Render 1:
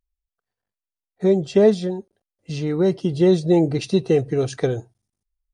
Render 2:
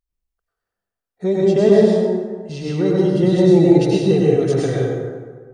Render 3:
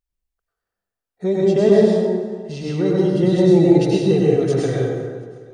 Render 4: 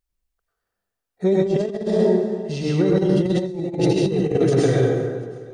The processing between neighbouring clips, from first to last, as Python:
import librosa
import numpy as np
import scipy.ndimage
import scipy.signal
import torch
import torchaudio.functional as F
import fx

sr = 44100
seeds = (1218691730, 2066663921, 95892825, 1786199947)

y1 = fx.rev_plate(x, sr, seeds[0], rt60_s=1.6, hf_ratio=0.5, predelay_ms=85, drr_db=-5.0)
y1 = y1 * librosa.db_to_amplitude(-2.5)
y2 = fx.echo_feedback(y1, sr, ms=363, feedback_pct=48, wet_db=-22)
y2 = y2 * librosa.db_to_amplitude(-1.0)
y3 = fx.over_compress(y2, sr, threshold_db=-18.0, ratio=-0.5)